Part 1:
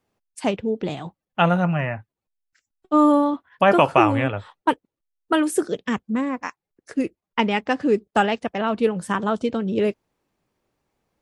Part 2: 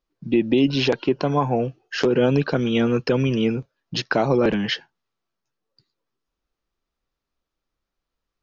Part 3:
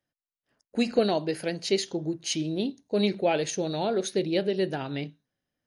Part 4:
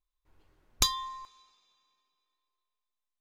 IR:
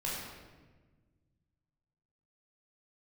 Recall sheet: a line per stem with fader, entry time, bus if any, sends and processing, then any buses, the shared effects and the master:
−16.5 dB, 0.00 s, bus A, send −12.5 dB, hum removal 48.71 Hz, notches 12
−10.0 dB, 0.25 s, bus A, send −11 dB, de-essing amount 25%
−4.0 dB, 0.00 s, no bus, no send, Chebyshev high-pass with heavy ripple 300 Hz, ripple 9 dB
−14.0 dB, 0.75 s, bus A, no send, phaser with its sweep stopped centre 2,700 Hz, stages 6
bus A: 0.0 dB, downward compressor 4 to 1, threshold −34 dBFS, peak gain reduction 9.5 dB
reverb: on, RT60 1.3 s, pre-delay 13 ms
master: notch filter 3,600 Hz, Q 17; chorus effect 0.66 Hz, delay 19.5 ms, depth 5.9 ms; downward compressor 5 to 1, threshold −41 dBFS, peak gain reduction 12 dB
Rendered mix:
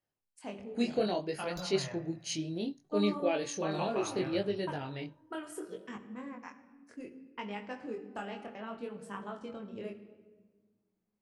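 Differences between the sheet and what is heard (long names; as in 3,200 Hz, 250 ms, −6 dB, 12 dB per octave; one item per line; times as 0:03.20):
stem 2: muted
stem 3: missing Chebyshev high-pass with heavy ripple 300 Hz, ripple 9 dB
master: missing downward compressor 5 to 1, threshold −41 dBFS, peak gain reduction 12 dB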